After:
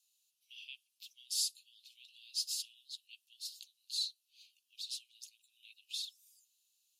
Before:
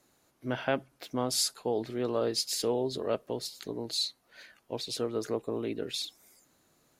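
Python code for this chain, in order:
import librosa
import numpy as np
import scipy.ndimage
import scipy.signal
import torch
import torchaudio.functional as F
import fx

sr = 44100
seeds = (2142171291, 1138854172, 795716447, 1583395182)

y = scipy.signal.sosfilt(scipy.signal.butter(16, 2600.0, 'highpass', fs=sr, output='sos'), x)
y = F.gain(torch.from_numpy(y), -5.0).numpy()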